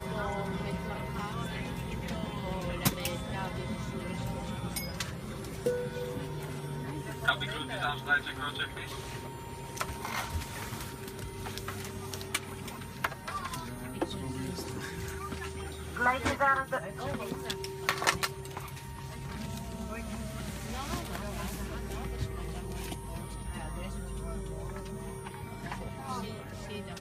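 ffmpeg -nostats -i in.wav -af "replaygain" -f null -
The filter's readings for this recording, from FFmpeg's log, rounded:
track_gain = +16.2 dB
track_peak = 0.275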